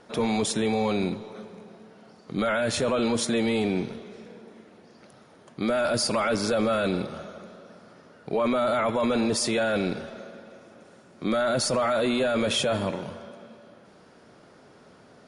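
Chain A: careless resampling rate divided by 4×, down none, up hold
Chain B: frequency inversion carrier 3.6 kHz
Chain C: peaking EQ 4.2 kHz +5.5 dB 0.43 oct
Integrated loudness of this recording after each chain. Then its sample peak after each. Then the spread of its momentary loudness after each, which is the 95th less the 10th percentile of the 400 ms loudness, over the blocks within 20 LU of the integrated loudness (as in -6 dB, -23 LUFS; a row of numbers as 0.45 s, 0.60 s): -26.0 LUFS, -23.0 LUFS, -25.5 LUFS; -16.0 dBFS, -14.0 dBFS, -13.0 dBFS; 18 LU, 18 LU, 18 LU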